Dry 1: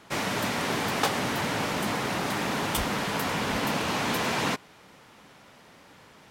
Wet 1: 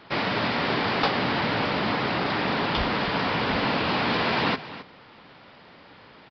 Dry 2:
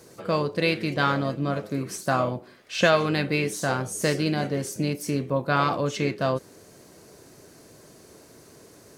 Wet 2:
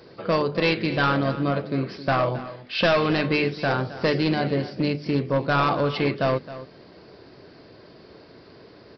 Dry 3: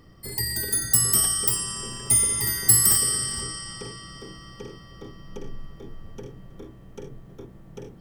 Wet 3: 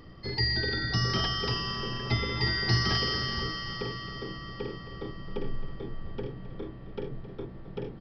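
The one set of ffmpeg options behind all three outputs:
-af "bandreject=f=50:t=h:w=6,bandreject=f=100:t=h:w=6,bandreject=f=150:t=h:w=6,bandreject=f=200:t=h:w=6,bandreject=f=250:t=h:w=6,aresample=11025,asoftclip=type=hard:threshold=0.112,aresample=44100,aecho=1:1:266:0.178,volume=1.5"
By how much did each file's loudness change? +3.0 LU, +2.0 LU, -10.5 LU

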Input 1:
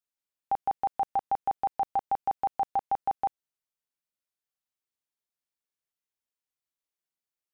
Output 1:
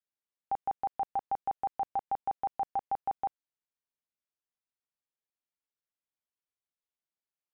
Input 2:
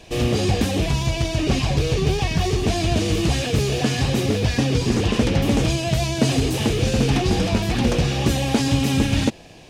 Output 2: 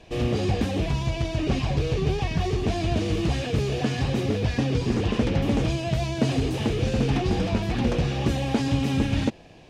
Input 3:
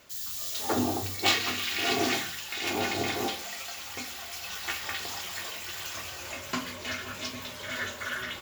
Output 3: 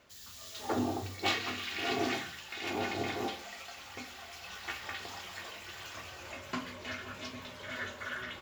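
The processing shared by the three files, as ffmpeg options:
-af "lowpass=f=2800:p=1,volume=0.631"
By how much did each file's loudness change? -4.5 LU, -4.5 LU, -7.0 LU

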